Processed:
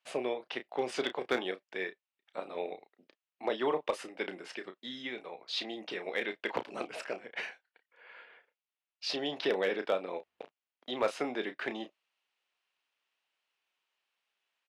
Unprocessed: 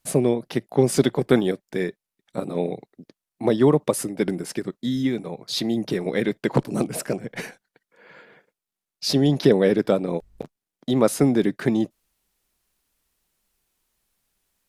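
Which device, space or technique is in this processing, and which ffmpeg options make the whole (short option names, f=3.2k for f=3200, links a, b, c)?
megaphone: -filter_complex "[0:a]highpass=670,lowpass=3.4k,equalizer=f=2.8k:t=o:w=0.54:g=7,asoftclip=type=hard:threshold=-15dB,asplit=2[a][b];[b]adelay=32,volume=-10dB[c];[a][c]amix=inputs=2:normalize=0,volume=-5dB"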